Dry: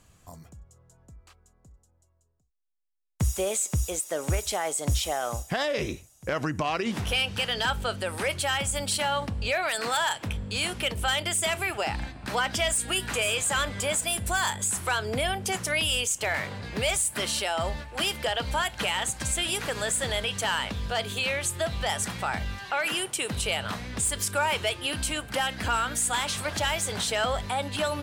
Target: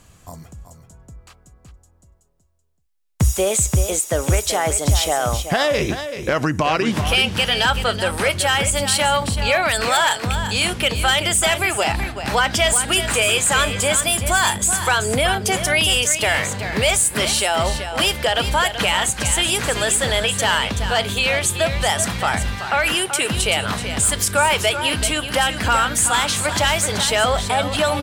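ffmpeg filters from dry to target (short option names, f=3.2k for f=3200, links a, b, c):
-af "aecho=1:1:381:0.335,volume=9dB"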